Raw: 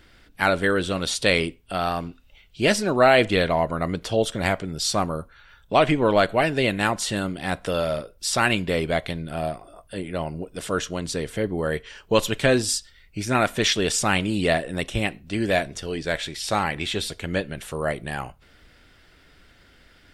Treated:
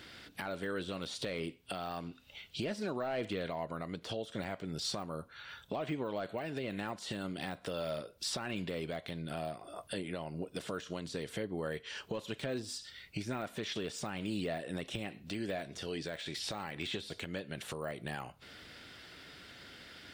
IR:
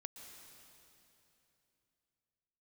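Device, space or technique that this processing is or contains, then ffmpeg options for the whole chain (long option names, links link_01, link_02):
broadcast voice chain: -af "highpass=110,deesser=0.95,acompressor=threshold=-39dB:ratio=3,equalizer=frequency=4000:width_type=o:width=1.1:gain=5,alimiter=level_in=4.5dB:limit=-24dB:level=0:latency=1:release=256,volume=-4.5dB,volume=2dB"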